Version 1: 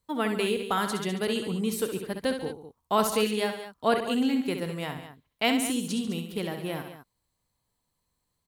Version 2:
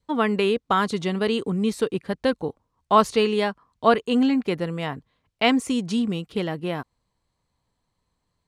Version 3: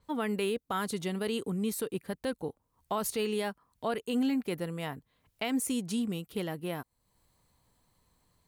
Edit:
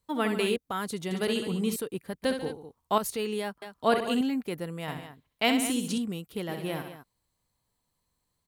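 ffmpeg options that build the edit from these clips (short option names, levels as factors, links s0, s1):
-filter_complex "[2:a]asplit=5[s0][s1][s2][s3][s4];[0:a]asplit=6[s5][s6][s7][s8][s9][s10];[s5]atrim=end=0.562[s11];[s0]atrim=start=0.558:end=1.112[s12];[s6]atrim=start=1.108:end=1.762[s13];[s1]atrim=start=1.758:end=2.222[s14];[s7]atrim=start=2.218:end=2.982[s15];[s2]atrim=start=2.978:end=3.622[s16];[s8]atrim=start=3.618:end=4.212[s17];[s3]atrim=start=4.208:end=4.882[s18];[s9]atrim=start=4.878:end=5.982[s19];[s4]atrim=start=5.978:end=6.492[s20];[s10]atrim=start=6.488[s21];[s11][s12]acrossfade=d=0.004:c1=hsin:c2=hsin[s22];[s22][s13]acrossfade=d=0.004:c1=hsin:c2=hsin[s23];[s23][s14]acrossfade=d=0.004:c1=hsin:c2=hsin[s24];[s24][s15]acrossfade=d=0.004:c1=hsin:c2=hsin[s25];[s25][s16]acrossfade=d=0.004:c1=hsin:c2=hsin[s26];[s26][s17]acrossfade=d=0.004:c1=hsin:c2=hsin[s27];[s27][s18]acrossfade=d=0.004:c1=hsin:c2=hsin[s28];[s28][s19]acrossfade=d=0.004:c1=hsin:c2=hsin[s29];[s29][s20]acrossfade=d=0.004:c1=hsin:c2=hsin[s30];[s30][s21]acrossfade=d=0.004:c1=hsin:c2=hsin"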